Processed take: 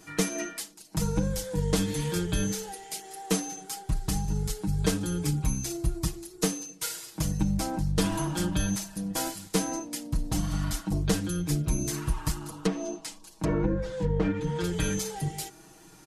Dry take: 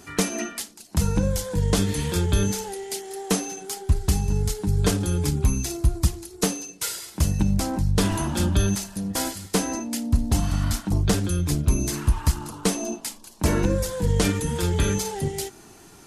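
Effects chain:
0:12.64–0:14.64: treble cut that deepens with the level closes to 1,500 Hz, closed at −17 dBFS
comb filter 6.3 ms, depth 90%
level −7 dB

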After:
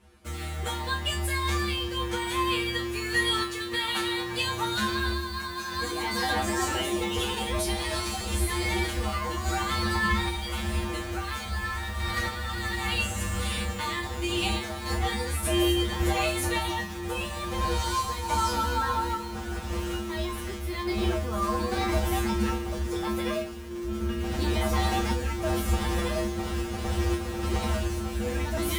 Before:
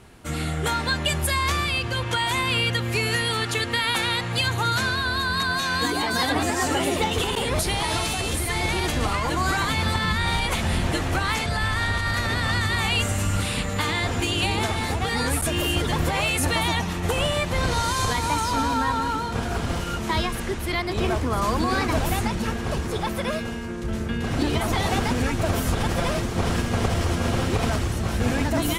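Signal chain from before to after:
sample-and-hold tremolo, depth 55%
in parallel at −4 dB: bit reduction 6 bits
on the sum: tuned comb filter 70 Hz, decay 0.29 s, harmonics odd, mix 100%
level +3.5 dB

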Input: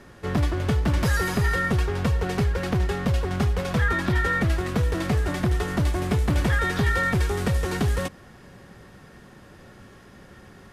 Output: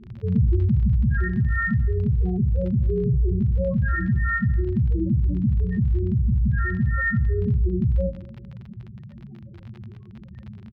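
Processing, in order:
running median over 5 samples
soft clipping −23.5 dBFS, distortion −11 dB
spectral peaks only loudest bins 4
0:02.89–0:03.30: EQ curve with evenly spaced ripples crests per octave 0.71, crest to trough 13 dB
convolution reverb, pre-delay 3 ms, DRR −2.5 dB
gate on every frequency bin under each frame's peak −25 dB strong
surface crackle 37 per second −32 dBFS
high-frequency loss of the air 340 metres
far-end echo of a speakerphone 230 ms, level −25 dB
brickwall limiter −19.5 dBFS, peak gain reduction 10.5 dB
speech leveller 2 s
level +5 dB

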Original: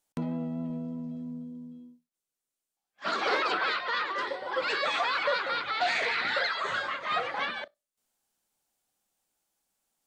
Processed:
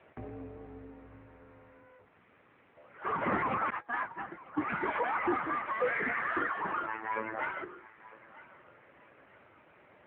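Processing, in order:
converter with a step at zero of −41.5 dBFS
0:03.70–0:04.83: noise gate −29 dBFS, range −27 dB
0:05.65–0:06.29: hum removal 99.36 Hz, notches 12
0:06.86–0:07.39: phases set to zero 110 Hz
feedback echo with a high-pass in the loop 953 ms, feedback 38%, high-pass 820 Hz, level −18 dB
single-sideband voice off tune −220 Hz 160–2,500 Hz
level −2 dB
AMR narrowband 7.95 kbit/s 8,000 Hz

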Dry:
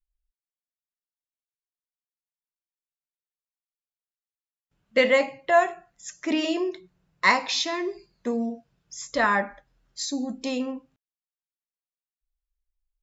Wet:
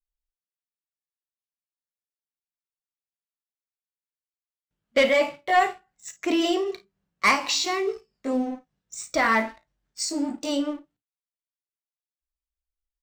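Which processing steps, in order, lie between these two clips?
pitch glide at a constant tempo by +2.5 semitones starting unshifted
leveller curve on the samples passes 2
ambience of single reflections 36 ms −14.5 dB, 54 ms −17 dB
level −4.5 dB

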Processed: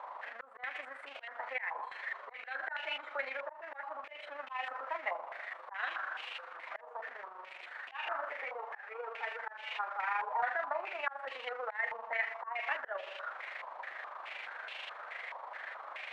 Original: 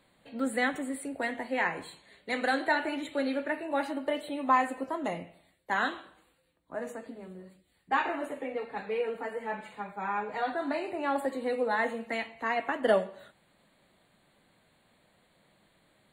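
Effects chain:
converter with a step at zero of −33.5 dBFS
high-pass filter 620 Hz 24 dB per octave
volume swells 249 ms
amplitude modulation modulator 25 Hz, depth 35%
low-pass on a step sequencer 4.7 Hz 1,000–2,800 Hz
level −5 dB

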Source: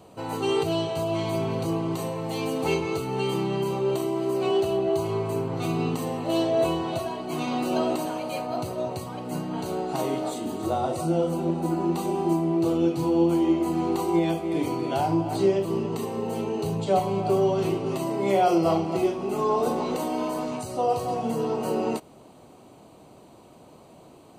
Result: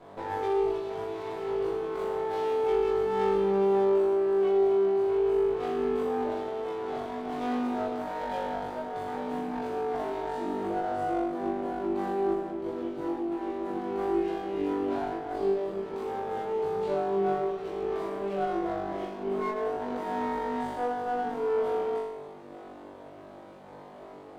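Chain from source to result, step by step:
three-way crossover with the lows and the highs turned down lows −13 dB, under 260 Hz, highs −17 dB, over 2,900 Hz
downward compressor 6 to 1, threshold −36 dBFS, peak gain reduction 17.5 dB
flutter between parallel walls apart 3.5 metres, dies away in 1 s
windowed peak hold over 9 samples

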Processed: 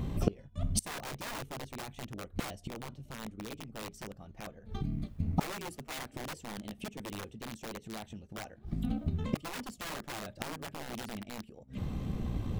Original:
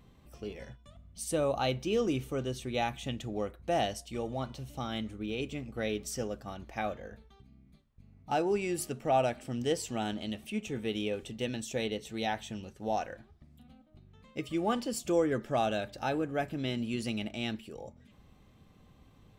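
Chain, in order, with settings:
low-shelf EQ 490 Hz +11 dB
wrap-around overflow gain 20.5 dB
time stretch by overlap-add 0.65×, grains 33 ms
gate with flip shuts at −30 dBFS, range −29 dB
level +15.5 dB

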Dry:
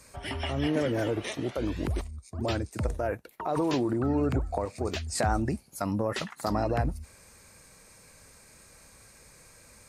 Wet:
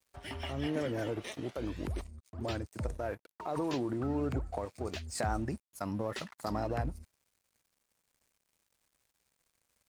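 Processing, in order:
noise gate with hold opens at −46 dBFS
dead-zone distortion −49 dBFS
level −6 dB

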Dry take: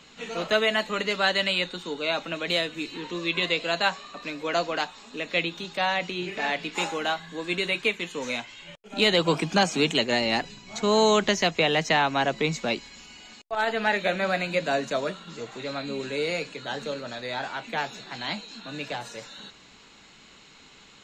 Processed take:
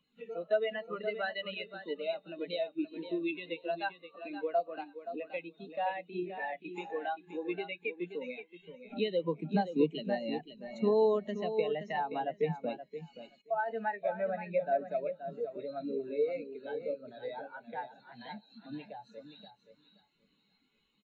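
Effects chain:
downward compressor 2.5 to 1, threshold −45 dBFS, peak gain reduction 18.5 dB
repeating echo 525 ms, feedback 41%, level −4.5 dB
every bin expanded away from the loudest bin 2.5 to 1
level +8.5 dB

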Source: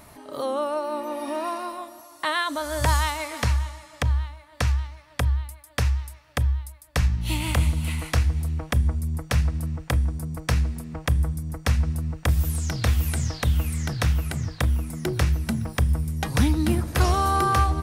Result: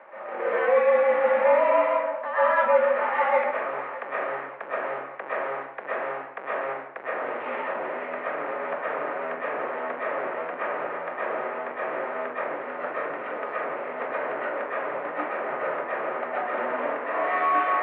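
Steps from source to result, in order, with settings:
each half-wave held at its own peak
reversed playback
downward compressor 6 to 1, threshold −27 dBFS, peak gain reduction 14.5 dB
reversed playback
comb and all-pass reverb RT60 0.65 s, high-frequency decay 0.6×, pre-delay 85 ms, DRR −9.5 dB
single-sideband voice off tune −61 Hz 520–2,200 Hz

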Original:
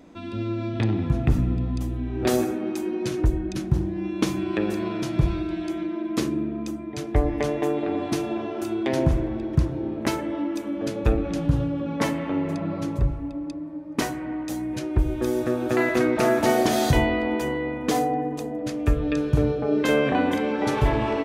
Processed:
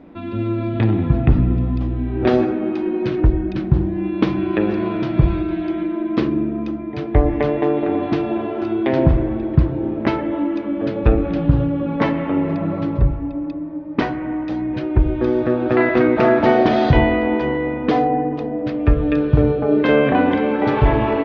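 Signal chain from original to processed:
Bessel low-pass filter 2,500 Hz, order 8
level +6.5 dB
Opus 32 kbit/s 48,000 Hz

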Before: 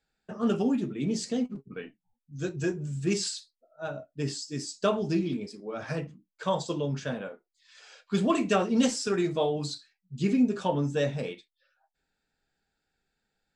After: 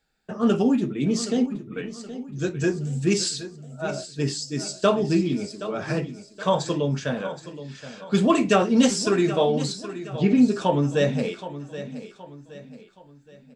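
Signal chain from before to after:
0:09.72–0:10.40: low-pass filter 3,400 Hz 12 dB per octave
repeating echo 772 ms, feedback 41%, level −13.5 dB
level +6 dB

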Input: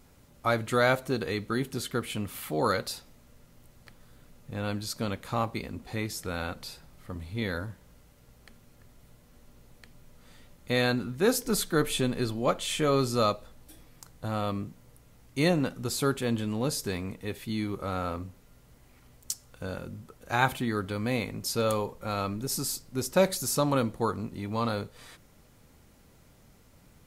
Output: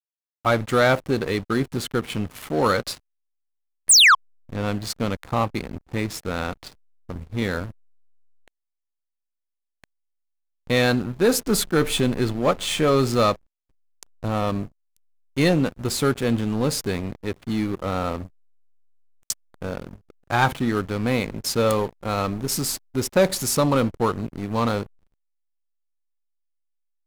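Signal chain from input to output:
sound drawn into the spectrogram fall, 0:03.89–0:04.15, 1,000–10,000 Hz −16 dBFS
slack as between gear wheels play −34 dBFS
leveller curve on the samples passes 2

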